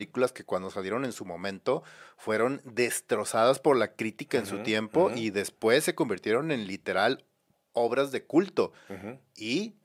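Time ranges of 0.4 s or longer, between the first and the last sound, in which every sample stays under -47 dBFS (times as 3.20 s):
7.20–7.75 s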